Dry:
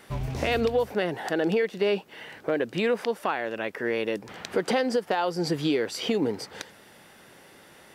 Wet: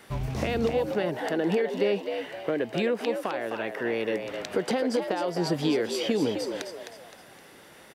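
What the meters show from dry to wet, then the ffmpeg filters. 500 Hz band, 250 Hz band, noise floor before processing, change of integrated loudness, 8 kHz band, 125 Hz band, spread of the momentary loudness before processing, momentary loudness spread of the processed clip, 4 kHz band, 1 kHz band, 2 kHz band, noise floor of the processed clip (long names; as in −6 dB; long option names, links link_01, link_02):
−0.5 dB, +0.5 dB, −53 dBFS, −1.0 dB, 0.0 dB, 0.0 dB, 9 LU, 7 LU, −1.5 dB, −2.5 dB, −2.5 dB, −51 dBFS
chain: -filter_complex "[0:a]acrossover=split=470[link_01][link_02];[link_02]acompressor=threshold=-30dB:ratio=6[link_03];[link_01][link_03]amix=inputs=2:normalize=0,asplit=5[link_04][link_05][link_06][link_07][link_08];[link_05]adelay=259,afreqshift=80,volume=-7dB[link_09];[link_06]adelay=518,afreqshift=160,volume=-15.4dB[link_10];[link_07]adelay=777,afreqshift=240,volume=-23.8dB[link_11];[link_08]adelay=1036,afreqshift=320,volume=-32.2dB[link_12];[link_04][link_09][link_10][link_11][link_12]amix=inputs=5:normalize=0"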